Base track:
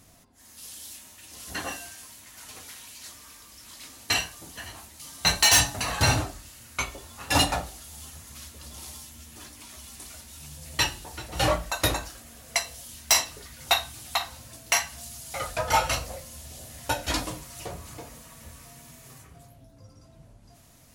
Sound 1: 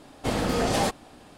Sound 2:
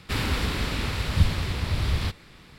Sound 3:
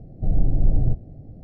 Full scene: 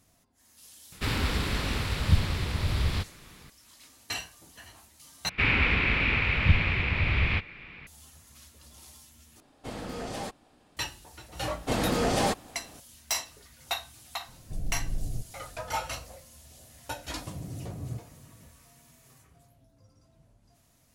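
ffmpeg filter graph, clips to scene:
ffmpeg -i bed.wav -i cue0.wav -i cue1.wav -i cue2.wav -filter_complex "[2:a]asplit=2[link_01][link_02];[1:a]asplit=2[link_03][link_04];[3:a]asplit=2[link_05][link_06];[0:a]volume=-9.5dB[link_07];[link_02]lowpass=frequency=2400:width_type=q:width=5.6[link_08];[link_05]aemphasis=mode=production:type=50fm[link_09];[link_06]highpass=frequency=86:width=0.5412,highpass=frequency=86:width=1.3066[link_10];[link_07]asplit=3[link_11][link_12][link_13];[link_11]atrim=end=5.294[link_14];[link_08]atrim=end=2.58,asetpts=PTS-STARTPTS,volume=-1.5dB[link_15];[link_12]atrim=start=7.866:end=9.404[link_16];[link_03]atrim=end=1.37,asetpts=PTS-STARTPTS,volume=-12dB[link_17];[link_13]atrim=start=10.766[link_18];[link_01]atrim=end=2.58,asetpts=PTS-STARTPTS,volume=-2dB,afade=type=in:duration=0.004:curve=hsin,afade=type=out:start_time=2.576:duration=0.004:curve=hsin,adelay=920[link_19];[link_04]atrim=end=1.37,asetpts=PTS-STARTPTS,volume=-1.5dB,afade=type=in:duration=0.004:curve=hsin,afade=type=out:start_time=1.366:duration=0.004:curve=hsin,adelay=11430[link_20];[link_09]atrim=end=1.43,asetpts=PTS-STARTPTS,volume=-13.5dB,afade=type=in:duration=0.004:curve=hsin,afade=type=out:start_time=1.426:duration=0.004:curve=hsin,adelay=629748S[link_21];[link_10]atrim=end=1.43,asetpts=PTS-STARTPTS,volume=-11.5dB,afade=type=in:duration=0.004:curve=hsin,afade=type=out:start_time=1.426:duration=0.004:curve=hsin,adelay=17040[link_22];[link_14][link_15]acrossfade=duration=0.004:curve1=hsin:curve2=hsin[link_23];[link_23][link_16]acrossfade=duration=0.004:curve1=hsin:curve2=hsin[link_24];[link_24][link_17]acrossfade=duration=0.004:curve1=hsin:curve2=hsin[link_25];[link_25][link_18]acrossfade=duration=0.004:curve1=hsin:curve2=hsin[link_26];[link_26][link_19][link_20][link_21][link_22]amix=inputs=5:normalize=0" out.wav

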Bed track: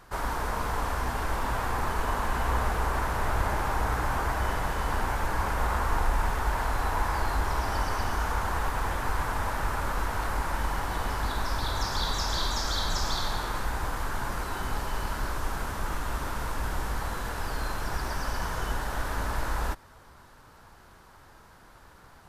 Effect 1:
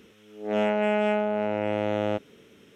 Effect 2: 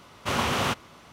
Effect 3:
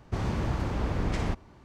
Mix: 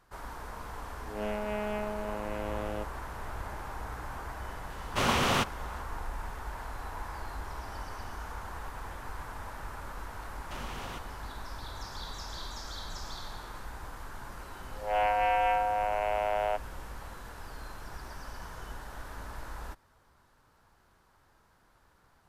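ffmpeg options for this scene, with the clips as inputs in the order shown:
ffmpeg -i bed.wav -i cue0.wav -i cue1.wav -filter_complex "[1:a]asplit=2[link_01][link_02];[2:a]asplit=2[link_03][link_04];[0:a]volume=-12dB[link_05];[link_04]acompressor=threshold=-29dB:ratio=6:attack=3.2:release=140:knee=1:detection=peak[link_06];[link_02]highpass=frequency=440:width_type=q:width=0.5412,highpass=frequency=440:width_type=q:width=1.307,lowpass=frequency=2800:width_type=q:width=0.5176,lowpass=frequency=2800:width_type=q:width=0.7071,lowpass=frequency=2800:width_type=q:width=1.932,afreqshift=100[link_07];[link_01]atrim=end=2.75,asetpts=PTS-STARTPTS,volume=-10.5dB,afade=type=in:duration=0.004:curve=hsin,afade=type=out:start_time=2.746:duration=0.004:curve=hsin,adelay=660[link_08];[link_03]atrim=end=1.12,asetpts=PTS-STARTPTS,volume=-1dB,afade=type=in:duration=0.004:curve=hsin,afade=type=out:start_time=1.116:duration=0.004:curve=hsin,adelay=4700[link_09];[link_06]atrim=end=1.12,asetpts=PTS-STARTPTS,volume=-10dB,afade=type=in:duration=0.004:curve=hsin,afade=type=out:start_time=1.116:duration=0.004:curve=hsin,adelay=10250[link_10];[link_07]atrim=end=2.75,asetpts=PTS-STARTPTS,volume=-1dB,afade=type=in:duration=0.004:curve=hsin,afade=type=out:start_time=2.746:duration=0.004:curve=hsin,adelay=14390[link_11];[link_05][link_08][link_09][link_10][link_11]amix=inputs=5:normalize=0" out.wav

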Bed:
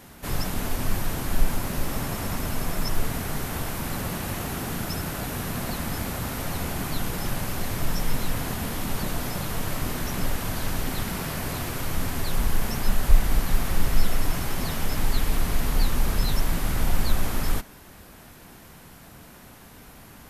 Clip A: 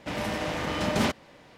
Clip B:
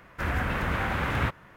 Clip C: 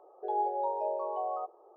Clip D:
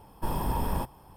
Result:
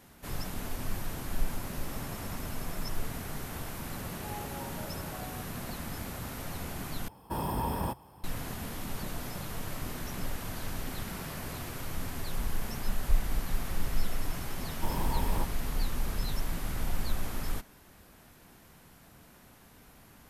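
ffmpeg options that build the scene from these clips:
ffmpeg -i bed.wav -i cue0.wav -i cue1.wav -i cue2.wav -i cue3.wav -filter_complex "[4:a]asplit=2[link_01][link_02];[0:a]volume=-9dB[link_03];[link_01]highpass=65[link_04];[2:a]acompressor=threshold=-40dB:ratio=6:attack=3.2:release=140:knee=1:detection=peak[link_05];[link_03]asplit=2[link_06][link_07];[link_06]atrim=end=7.084[link_08];[link_04]atrim=end=1.16,asetpts=PTS-STARTPTS,volume=-1dB[link_09];[link_07]atrim=start=8.236[link_10];[3:a]atrim=end=1.76,asetpts=PTS-STARTPTS,volume=-13.5dB,afade=type=in:duration=0.004:curve=hsin,afade=type=out:start_time=1.756:duration=0.004:curve=hsin,adelay=3960[link_11];[link_05]atrim=end=1.56,asetpts=PTS-STARTPTS,volume=-12.5dB,afade=type=in:duration=0.004:curve=hsin,afade=type=out:start_time=1.556:duration=0.004:curve=hsin,adelay=10310[link_12];[link_02]atrim=end=1.16,asetpts=PTS-STARTPTS,volume=-4dB,afade=type=in:duration=0.004:curve=hsin,afade=type=out:start_time=1.156:duration=0.004:curve=hsin,adelay=643860S[link_13];[link_08][link_09]acrossfade=duration=0.004:curve1=hsin:curve2=hsin[link_14];[link_14][link_10]acrossfade=duration=0.004:curve1=hsin:curve2=hsin[link_15];[link_15][link_11][link_12][link_13]amix=inputs=4:normalize=0" out.wav

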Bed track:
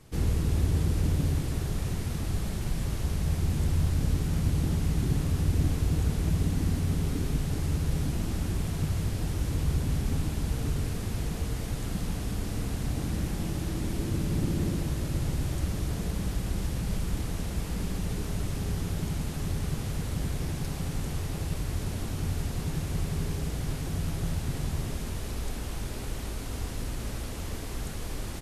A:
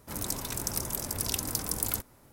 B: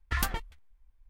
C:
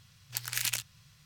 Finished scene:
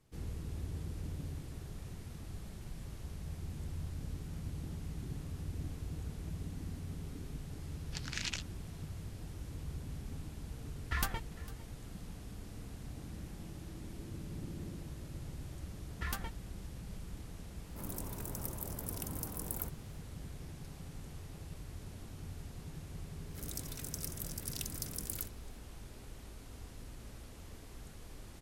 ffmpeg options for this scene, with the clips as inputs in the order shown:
ffmpeg -i bed.wav -i cue0.wav -i cue1.wav -i cue2.wav -filter_complex "[2:a]asplit=2[link_01][link_02];[1:a]asplit=2[link_03][link_04];[0:a]volume=-15.5dB[link_05];[3:a]lowpass=frequency=6400:width=0.5412,lowpass=frequency=6400:width=1.3066[link_06];[link_01]aecho=1:1:453:0.1[link_07];[link_03]equalizer=frequency=4100:width_type=o:width=2.1:gain=-14.5[link_08];[link_04]equalizer=frequency=880:width=1.9:gain=-13[link_09];[link_06]atrim=end=1.25,asetpts=PTS-STARTPTS,volume=-5dB,afade=type=in:duration=0.004:curve=hsin,afade=type=out:start_time=1.246:duration=0.004:curve=hsin,adelay=7600[link_10];[link_07]atrim=end=1.09,asetpts=PTS-STARTPTS,volume=-5dB,afade=type=in:duration=0.004:curve=hsin,afade=type=out:start_time=1.086:duration=0.004:curve=hsin,adelay=10800[link_11];[link_02]atrim=end=1.09,asetpts=PTS-STARTPTS,volume=-9.5dB,afade=type=in:duration=0.004:curve=hsin,afade=type=out:start_time=1.086:duration=0.004:curve=hsin,adelay=15900[link_12];[link_08]atrim=end=2.32,asetpts=PTS-STARTPTS,volume=-6.5dB,afade=type=in:duration=0.004:curve=hsin,afade=type=out:start_time=2.316:duration=0.004:curve=hsin,adelay=17680[link_13];[link_09]atrim=end=2.32,asetpts=PTS-STARTPTS,volume=-10dB,afade=type=in:duration=0.004:curve=hsin,afade=type=out:start_time=2.316:duration=0.004:curve=hsin,adelay=23270[link_14];[link_05][link_10][link_11][link_12][link_13][link_14]amix=inputs=6:normalize=0" out.wav

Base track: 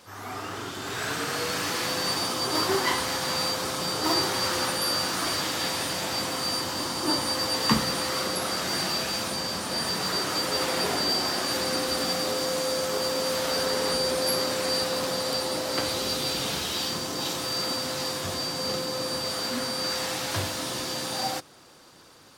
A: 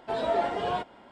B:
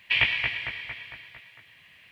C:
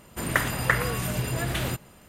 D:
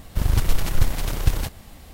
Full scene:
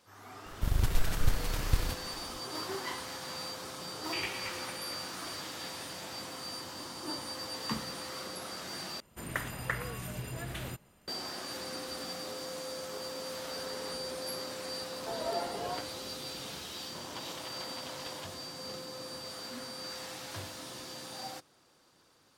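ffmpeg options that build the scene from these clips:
ffmpeg -i bed.wav -i cue0.wav -i cue1.wav -i cue2.wav -i cue3.wav -filter_complex "[4:a]asplit=2[link_01][link_02];[0:a]volume=-13dB[link_03];[link_02]highpass=450,equalizer=frequency=600:width_type=q:width=4:gain=6,equalizer=frequency=970:width_type=q:width=4:gain=8,equalizer=frequency=3200:width_type=q:width=4:gain=7,lowpass=frequency=5800:width=0.5412,lowpass=frequency=5800:width=1.3066[link_04];[link_03]asplit=2[link_05][link_06];[link_05]atrim=end=9.004[link_07];[3:a]atrim=end=2.08,asetpts=PTS-STARTPTS,volume=-11.5dB[link_08];[link_06]atrim=start=11.076[link_09];[link_01]atrim=end=1.93,asetpts=PTS-STARTPTS,volume=-8.5dB,afade=type=in:duration=0.004:curve=hsin,afade=type=out:start_time=1.926:duration=0.004:curve=hsin,adelay=460[link_10];[2:a]atrim=end=2.11,asetpts=PTS-STARTPTS,volume=-16dB,afade=type=in:duration=0.004:curve=hsin,afade=type=out:start_time=2.106:duration=0.004:curve=hsin,adelay=4020[link_11];[1:a]atrim=end=1.11,asetpts=PTS-STARTPTS,volume=-9dB,afade=type=in:duration=0.004:curve=hsin,afade=type=out:start_time=1.106:duration=0.004:curve=hsin,adelay=14980[link_12];[link_04]atrim=end=1.93,asetpts=PTS-STARTPTS,volume=-14.5dB,afade=type=in:duration=0.004:curve=hsin,afade=type=out:start_time=1.926:duration=0.004:curve=hsin,adelay=16790[link_13];[link_07][link_08]acrossfade=duration=0.004:curve1=hsin:curve2=hsin[link_14];[link_14][link_09]acrossfade=duration=0.004:curve1=hsin:curve2=hsin[link_15];[link_15][link_10][link_11][link_12][link_13]amix=inputs=5:normalize=0" out.wav

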